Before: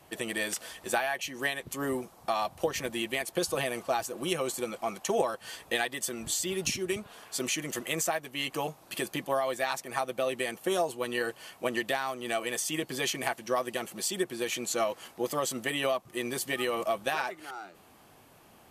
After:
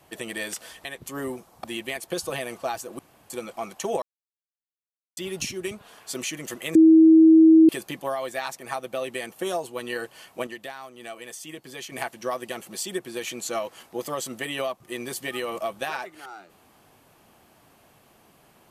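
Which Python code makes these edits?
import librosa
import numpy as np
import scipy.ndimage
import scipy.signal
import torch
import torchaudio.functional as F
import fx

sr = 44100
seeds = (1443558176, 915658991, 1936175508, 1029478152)

y = fx.edit(x, sr, fx.cut(start_s=0.85, length_s=0.65),
    fx.cut(start_s=2.29, length_s=0.6),
    fx.room_tone_fill(start_s=4.24, length_s=0.31),
    fx.silence(start_s=5.27, length_s=1.15),
    fx.bleep(start_s=8.0, length_s=0.94, hz=321.0, db=-9.5),
    fx.clip_gain(start_s=11.72, length_s=1.45, db=-7.5), tone=tone)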